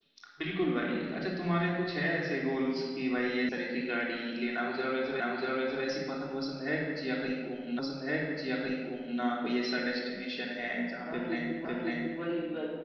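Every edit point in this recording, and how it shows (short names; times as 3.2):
3.49 sound cut off
5.2 repeat of the last 0.64 s
7.79 repeat of the last 1.41 s
11.65 repeat of the last 0.55 s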